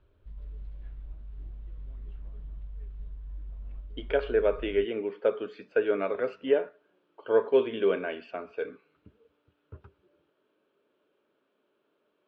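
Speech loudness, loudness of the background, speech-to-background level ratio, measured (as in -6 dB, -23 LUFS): -28.5 LUFS, -44.5 LUFS, 16.0 dB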